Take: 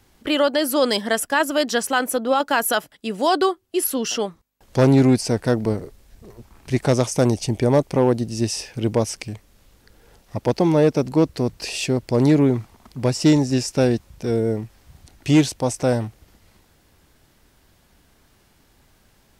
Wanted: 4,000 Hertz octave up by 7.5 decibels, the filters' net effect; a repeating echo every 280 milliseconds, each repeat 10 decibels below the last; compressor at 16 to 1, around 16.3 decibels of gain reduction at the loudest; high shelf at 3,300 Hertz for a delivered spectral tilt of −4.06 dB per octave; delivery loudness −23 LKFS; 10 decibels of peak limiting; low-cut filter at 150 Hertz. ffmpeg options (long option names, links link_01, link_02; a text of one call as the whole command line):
ffmpeg -i in.wav -af "highpass=150,highshelf=frequency=3300:gain=6,equalizer=frequency=4000:width_type=o:gain=5.5,acompressor=threshold=-27dB:ratio=16,alimiter=limit=-22dB:level=0:latency=1,aecho=1:1:280|560|840|1120:0.316|0.101|0.0324|0.0104,volume=10.5dB" out.wav